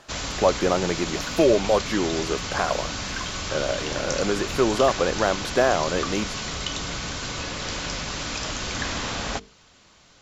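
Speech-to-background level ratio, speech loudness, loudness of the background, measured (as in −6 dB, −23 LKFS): 4.5 dB, −24.5 LKFS, −29.0 LKFS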